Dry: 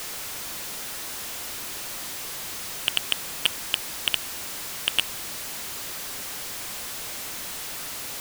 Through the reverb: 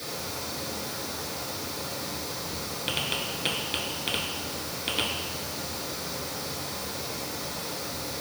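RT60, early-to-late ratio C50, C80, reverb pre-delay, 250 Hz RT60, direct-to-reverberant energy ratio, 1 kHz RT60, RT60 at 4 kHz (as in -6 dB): 1.1 s, 2.0 dB, 5.0 dB, 3 ms, 1.0 s, -7.5 dB, 1.2 s, 1.3 s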